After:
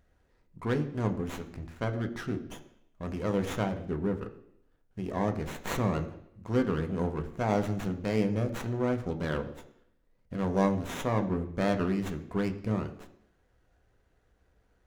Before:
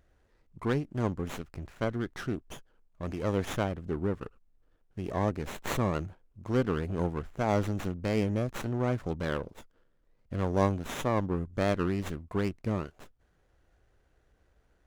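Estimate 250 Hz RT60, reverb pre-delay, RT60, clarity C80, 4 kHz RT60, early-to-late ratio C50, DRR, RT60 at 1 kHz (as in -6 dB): 0.75 s, 3 ms, 0.75 s, 14.5 dB, 0.75 s, 12.5 dB, 5.5 dB, 0.75 s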